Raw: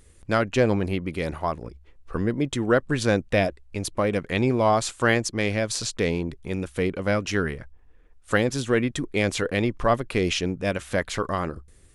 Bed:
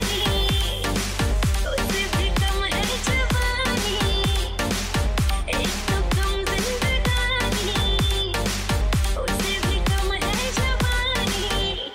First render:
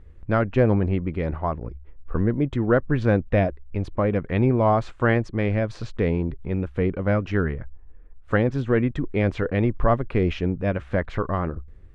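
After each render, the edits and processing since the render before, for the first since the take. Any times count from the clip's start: low-pass 1.8 kHz 12 dB/octave; bass shelf 120 Hz +10.5 dB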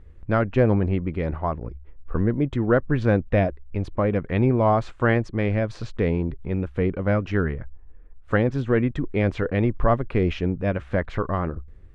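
no audible change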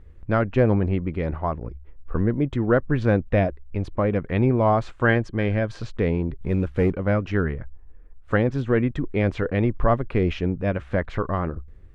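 5.04–5.80 s: small resonant body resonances 1.6/3.1 kHz, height 10 dB; 6.41–6.93 s: waveshaping leveller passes 1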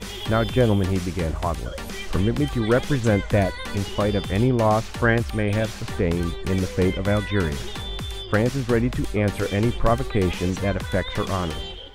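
add bed -10 dB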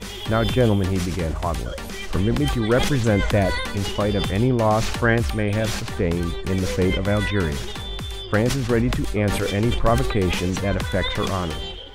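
decay stretcher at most 40 dB/s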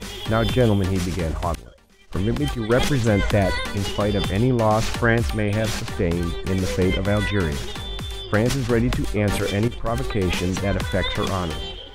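1.55–2.70 s: expander -18 dBFS; 9.68–10.34 s: fade in, from -12.5 dB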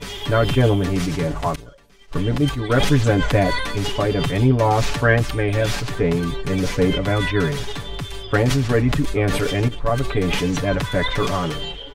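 peaking EQ 12 kHz -3.5 dB 1.6 oct; comb 7 ms, depth 95%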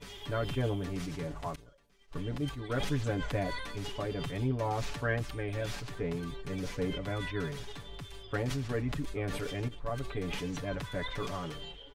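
trim -15.5 dB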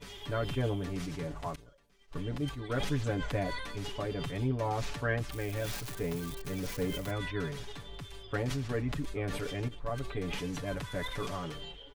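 5.32–7.11 s: zero-crossing glitches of -35 dBFS; 10.40–11.35 s: CVSD coder 64 kbps

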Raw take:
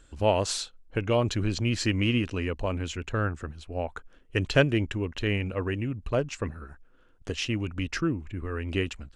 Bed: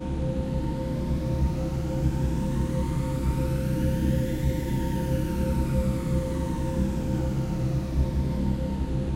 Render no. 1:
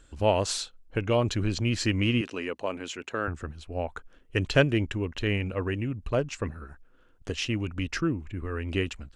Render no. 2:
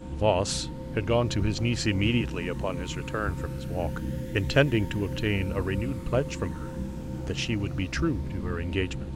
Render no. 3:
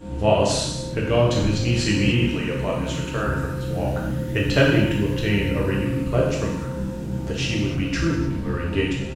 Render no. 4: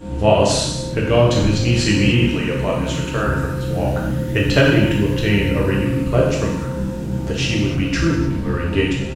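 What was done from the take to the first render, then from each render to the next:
2.21–3.28 s: high-pass 280 Hz
add bed -8 dB
delay 291 ms -22.5 dB; gated-style reverb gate 330 ms falling, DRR -4 dB
trim +4.5 dB; peak limiter -3 dBFS, peak gain reduction 3 dB

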